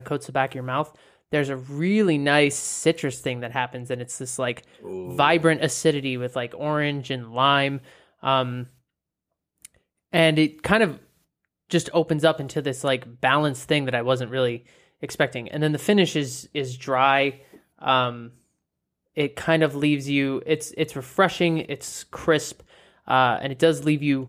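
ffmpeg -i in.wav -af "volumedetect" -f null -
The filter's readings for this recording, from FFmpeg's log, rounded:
mean_volume: -24.0 dB
max_volume: -5.2 dB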